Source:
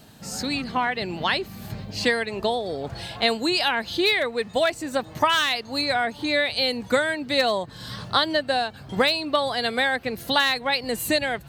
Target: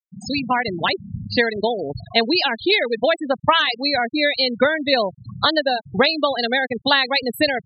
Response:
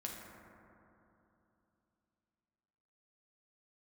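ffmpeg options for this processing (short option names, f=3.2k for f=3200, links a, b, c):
-af "adynamicequalizer=threshold=0.0158:dfrequency=1100:dqfactor=0.88:tfrequency=1100:tqfactor=0.88:attack=5:release=100:ratio=0.375:range=2.5:mode=cutabove:tftype=bell,afftfilt=real='re*gte(hypot(re,im),0.0794)':imag='im*gte(hypot(re,im),0.0794)':win_size=1024:overlap=0.75,atempo=1.5,volume=5.5dB"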